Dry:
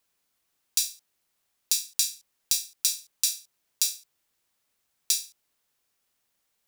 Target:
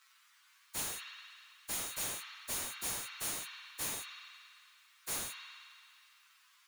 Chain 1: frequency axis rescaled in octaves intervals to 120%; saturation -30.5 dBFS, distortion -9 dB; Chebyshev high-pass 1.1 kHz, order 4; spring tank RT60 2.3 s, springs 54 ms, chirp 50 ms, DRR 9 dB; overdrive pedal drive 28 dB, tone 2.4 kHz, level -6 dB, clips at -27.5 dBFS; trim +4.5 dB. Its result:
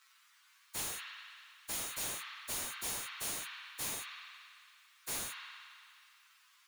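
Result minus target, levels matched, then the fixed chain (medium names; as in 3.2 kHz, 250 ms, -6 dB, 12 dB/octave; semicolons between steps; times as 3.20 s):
saturation: distortion +8 dB
frequency axis rescaled in octaves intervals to 120%; saturation -23 dBFS, distortion -16 dB; Chebyshev high-pass 1.1 kHz, order 4; spring tank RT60 2.3 s, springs 54 ms, chirp 50 ms, DRR 9 dB; overdrive pedal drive 28 dB, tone 2.4 kHz, level -6 dB, clips at -27.5 dBFS; trim +4.5 dB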